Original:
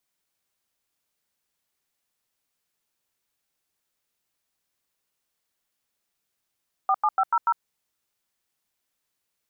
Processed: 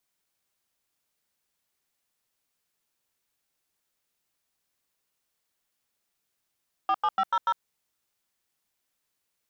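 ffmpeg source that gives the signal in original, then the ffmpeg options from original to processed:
-f lavfi -i "aevalsrc='0.0944*clip(min(mod(t,0.145),0.054-mod(t,0.145))/0.002,0,1)*(eq(floor(t/0.145),0)*(sin(2*PI*770*mod(t,0.145))+sin(2*PI*1209*mod(t,0.145)))+eq(floor(t/0.145),1)*(sin(2*PI*852*mod(t,0.145))+sin(2*PI*1209*mod(t,0.145)))+eq(floor(t/0.145),2)*(sin(2*PI*770*mod(t,0.145))+sin(2*PI*1336*mod(t,0.145)))+eq(floor(t/0.145),3)*(sin(2*PI*941*mod(t,0.145))+sin(2*PI*1336*mod(t,0.145)))+eq(floor(t/0.145),4)*(sin(2*PI*941*mod(t,0.145))+sin(2*PI*1336*mod(t,0.145))))':d=0.725:s=44100"
-af "asoftclip=type=tanh:threshold=-19dB"

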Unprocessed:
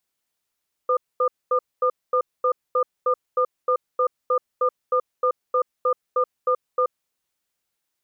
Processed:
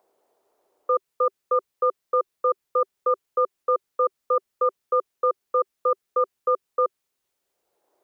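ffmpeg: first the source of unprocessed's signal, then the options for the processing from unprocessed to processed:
-f lavfi -i "aevalsrc='0.106*(sin(2*PI*505*t)+sin(2*PI*1210*t))*clip(min(mod(t,0.31),0.08-mod(t,0.31))/0.005,0,1)':d=6.01:s=44100"
-filter_complex "[0:a]equalizer=f=390:w=5.1:g=5.5,acrossover=split=490|640[a][b][c];[b]acompressor=mode=upward:threshold=-44dB:ratio=2.5[d];[a][d][c]amix=inputs=3:normalize=0"

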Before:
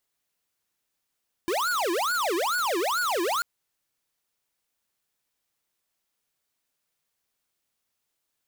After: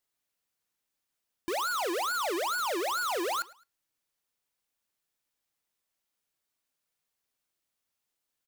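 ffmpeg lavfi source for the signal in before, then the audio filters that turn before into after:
-f lavfi -i "aevalsrc='0.0501*(2*lt(mod((901.5*t-568.5/(2*PI*2.3)*sin(2*PI*2.3*t)),1),0.5)-1)':d=1.94:s=44100"
-af "flanger=delay=3:depth=1.1:regen=89:speed=0.79:shape=triangular,aecho=1:1:107|214:0.075|0.027"

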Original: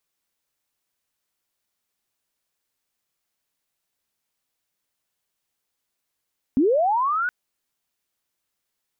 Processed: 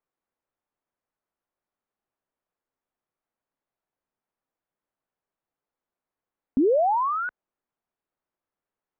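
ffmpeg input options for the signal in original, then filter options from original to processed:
-f lavfi -i "aevalsrc='pow(10,(-14.5-6.5*t/0.72)/20)*sin(2*PI*(240*t+1260*t*t/(2*0.72)))':d=0.72:s=44100"
-af "lowpass=1.2k,equalizer=f=81:w=0.57:g=-6"

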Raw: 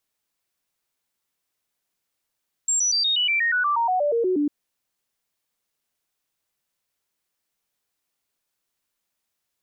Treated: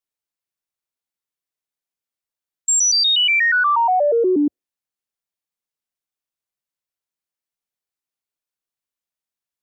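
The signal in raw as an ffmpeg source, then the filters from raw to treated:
-f lavfi -i "aevalsrc='0.119*clip(min(mod(t,0.12),0.12-mod(t,0.12))/0.005,0,1)*sin(2*PI*7440*pow(2,-floor(t/0.12)/3)*mod(t,0.12))':d=1.8:s=44100"
-af "afftdn=nr=17:nf=-39,acontrast=46"

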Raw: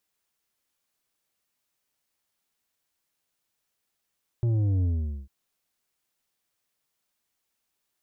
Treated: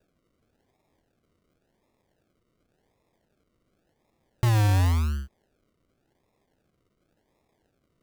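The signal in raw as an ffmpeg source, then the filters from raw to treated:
-f lavfi -i "aevalsrc='0.0794*clip((0.85-t)/0.45,0,1)*tanh(2.37*sin(2*PI*120*0.85/log(65/120)*(exp(log(65/120)*t/0.85)-1)))/tanh(2.37)':d=0.85:s=44100"
-filter_complex "[0:a]asplit=2[a][b];[b]acompressor=threshold=-33dB:ratio=6,volume=3dB[c];[a][c]amix=inputs=2:normalize=0,acrusher=samples=41:mix=1:aa=0.000001:lfo=1:lforange=24.6:lforate=0.91"

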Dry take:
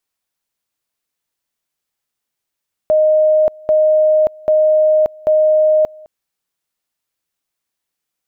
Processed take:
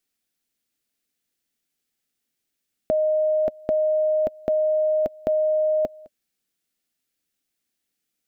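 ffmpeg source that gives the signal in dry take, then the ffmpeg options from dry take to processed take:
-f lavfi -i "aevalsrc='pow(10,(-8.5-26*gte(mod(t,0.79),0.58))/20)*sin(2*PI*619*t)':d=3.16:s=44100"
-af "bandreject=f=600:w=12,acompressor=threshold=-17dB:ratio=6,equalizer=f=100:t=o:w=0.67:g=-4,equalizer=f=250:t=o:w=0.67:g=7,equalizer=f=1k:t=o:w=0.67:g=-11"

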